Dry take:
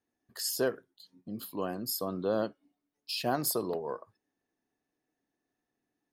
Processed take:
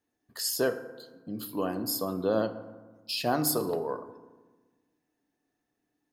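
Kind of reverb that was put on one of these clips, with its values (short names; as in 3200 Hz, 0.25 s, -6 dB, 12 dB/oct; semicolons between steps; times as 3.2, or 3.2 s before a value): FDN reverb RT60 1.3 s, low-frequency decay 1.35×, high-frequency decay 0.45×, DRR 9 dB; gain +2.5 dB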